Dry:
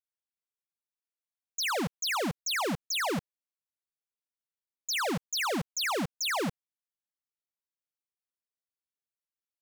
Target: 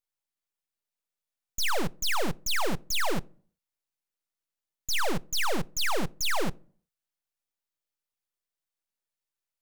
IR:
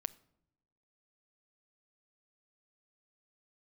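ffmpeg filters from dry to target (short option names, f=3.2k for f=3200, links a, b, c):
-filter_complex "[0:a]equalizer=f=260:w=3.8:g=-6,aeval=exprs='max(val(0),0)':c=same,asplit=2[a][b];[1:a]atrim=start_sample=2205,asetrate=88200,aresample=44100[c];[b][c]afir=irnorm=-1:irlink=0,volume=9dB[d];[a][d]amix=inputs=2:normalize=0"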